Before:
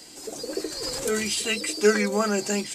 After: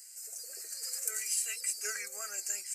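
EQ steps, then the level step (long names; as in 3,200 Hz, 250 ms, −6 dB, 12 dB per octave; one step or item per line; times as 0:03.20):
first difference
parametric band 220 Hz −7 dB 2.2 octaves
phaser with its sweep stopped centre 950 Hz, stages 6
0.0 dB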